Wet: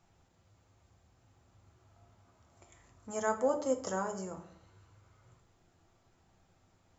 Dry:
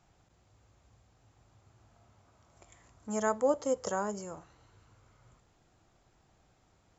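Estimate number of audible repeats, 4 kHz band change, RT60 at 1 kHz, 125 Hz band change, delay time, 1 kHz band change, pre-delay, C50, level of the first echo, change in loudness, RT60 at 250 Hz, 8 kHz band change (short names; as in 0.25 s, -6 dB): none, -1.5 dB, 0.55 s, -0.5 dB, none, -1.5 dB, 6 ms, 11.0 dB, none, -2.0 dB, 0.75 s, n/a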